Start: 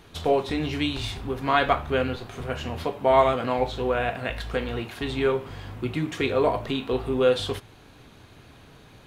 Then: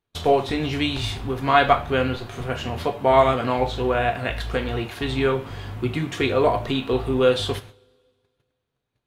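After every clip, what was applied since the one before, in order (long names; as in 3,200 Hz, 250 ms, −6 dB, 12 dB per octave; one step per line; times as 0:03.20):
noise gate −44 dBFS, range −35 dB
coupled-rooms reverb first 0.25 s, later 1.8 s, from −27 dB, DRR 9.5 dB
level +3 dB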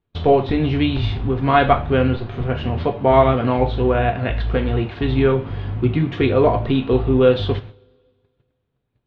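low-pass filter 3,900 Hz 24 dB per octave
low-shelf EQ 480 Hz +10 dB
level −1 dB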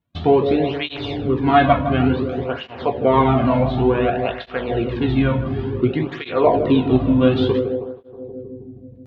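on a send: feedback echo with a low-pass in the loop 159 ms, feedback 80%, low-pass 1,000 Hz, level −8 dB
on the sum: through-zero flanger with one copy inverted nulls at 0.56 Hz, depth 2.6 ms
level +2.5 dB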